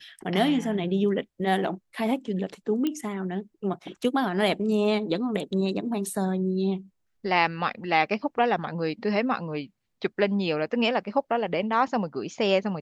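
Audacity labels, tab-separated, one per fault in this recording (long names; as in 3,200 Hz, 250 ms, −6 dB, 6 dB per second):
2.870000	2.870000	click −15 dBFS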